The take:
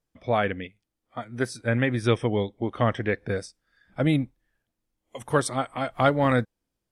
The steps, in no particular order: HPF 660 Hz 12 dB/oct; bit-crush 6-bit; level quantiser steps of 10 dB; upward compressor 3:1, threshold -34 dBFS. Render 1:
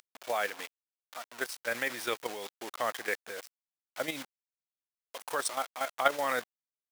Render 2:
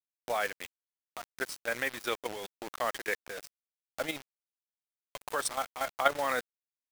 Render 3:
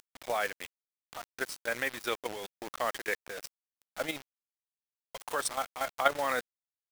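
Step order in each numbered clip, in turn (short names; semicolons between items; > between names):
upward compressor > bit-crush > HPF > level quantiser; HPF > bit-crush > upward compressor > level quantiser; HPF > upward compressor > bit-crush > level quantiser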